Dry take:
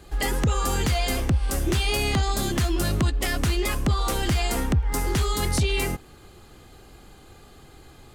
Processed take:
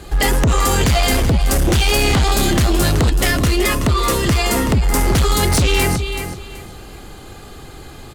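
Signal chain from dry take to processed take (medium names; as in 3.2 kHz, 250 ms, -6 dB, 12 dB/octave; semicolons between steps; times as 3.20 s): 3.31–4.73 s: comb of notches 780 Hz; feedback delay 378 ms, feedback 24%, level -11 dB; sine folder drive 6 dB, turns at -12.5 dBFS; trim +2 dB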